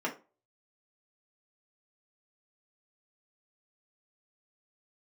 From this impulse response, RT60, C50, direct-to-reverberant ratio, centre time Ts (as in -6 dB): 0.35 s, 12.5 dB, -3.5 dB, 16 ms